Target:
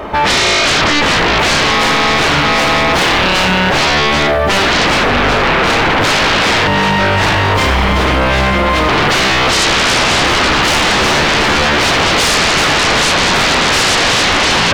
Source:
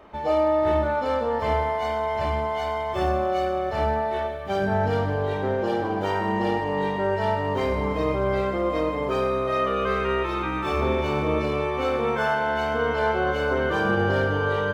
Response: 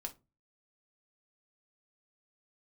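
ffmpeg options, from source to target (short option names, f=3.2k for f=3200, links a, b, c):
-filter_complex "[0:a]asettb=1/sr,asplit=3[a][b][c];[a]atrim=end=6.674[d];[b]atrim=start=6.67:end=8.89,asetpts=PTS-STARTPTS,afade=t=in:d=0.004:c=qsin,afade=t=out:st=2.216:d=0.004:c=qsin,equalizer=f=440:w=1:g=-14.5[e];[c]atrim=start=8.886[f];[d][e]acrossfade=d=0.004:c1=hsin:c2=qsin[g];[g][f]acrossfade=d=0.004:c1=qsin:c2=hsin,aeval=exprs='0.299*sin(PI/2*8.91*val(0)/0.299)':c=same,volume=2dB"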